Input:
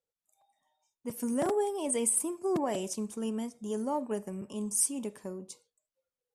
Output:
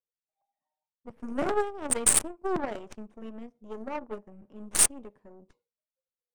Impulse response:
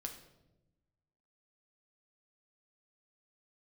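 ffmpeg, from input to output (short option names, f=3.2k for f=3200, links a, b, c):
-af "adynamicequalizer=threshold=0.00501:dfrequency=9000:dqfactor=6.3:tfrequency=9000:tqfactor=6.3:attack=5:release=100:ratio=0.375:range=3.5:mode=boostabove:tftype=bell,aeval=exprs='0.251*(cos(1*acos(clip(val(0)/0.251,-1,1)))-cos(1*PI/2))+0.0126*(cos(4*acos(clip(val(0)/0.251,-1,1)))-cos(4*PI/2))+0.0316*(cos(7*acos(clip(val(0)/0.251,-1,1)))-cos(7*PI/2))+0.00891*(cos(8*acos(clip(val(0)/0.251,-1,1)))-cos(8*PI/2))':c=same,adynamicsmooth=sensitivity=6:basefreq=1.8k,volume=7.5dB"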